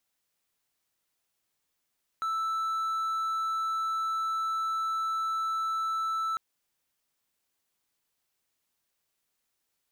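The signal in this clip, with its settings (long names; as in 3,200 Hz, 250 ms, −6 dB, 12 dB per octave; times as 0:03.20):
tone triangle 1,320 Hz −25.5 dBFS 4.15 s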